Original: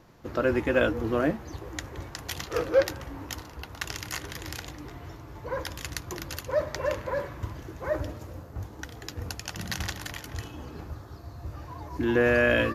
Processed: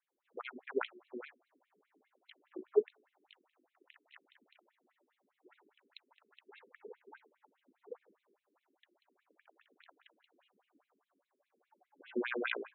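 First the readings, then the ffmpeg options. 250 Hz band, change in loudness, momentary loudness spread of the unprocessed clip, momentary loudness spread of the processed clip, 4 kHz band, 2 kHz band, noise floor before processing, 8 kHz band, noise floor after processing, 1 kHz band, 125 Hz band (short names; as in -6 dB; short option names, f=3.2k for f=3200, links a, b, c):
-17.5 dB, -9.5 dB, 17 LU, 21 LU, -16.5 dB, -15.5 dB, -46 dBFS, under -40 dB, under -85 dBFS, -16.0 dB, under -40 dB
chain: -af "afreqshift=-120,aeval=exprs='0.335*(cos(1*acos(clip(val(0)/0.335,-1,1)))-cos(1*PI/2))+0.106*(cos(3*acos(clip(val(0)/0.335,-1,1)))-cos(3*PI/2))+0.00422*(cos(5*acos(clip(val(0)/0.335,-1,1)))-cos(5*PI/2))+0.00188*(cos(7*acos(clip(val(0)/0.335,-1,1)))-cos(7*PI/2))':c=same,afftfilt=real='re*between(b*sr/1024,300*pow(3000/300,0.5+0.5*sin(2*PI*4.9*pts/sr))/1.41,300*pow(3000/300,0.5+0.5*sin(2*PI*4.9*pts/sr))*1.41)':imag='im*between(b*sr/1024,300*pow(3000/300,0.5+0.5*sin(2*PI*4.9*pts/sr))/1.41,300*pow(3000/300,0.5+0.5*sin(2*PI*4.9*pts/sr))*1.41)':win_size=1024:overlap=0.75"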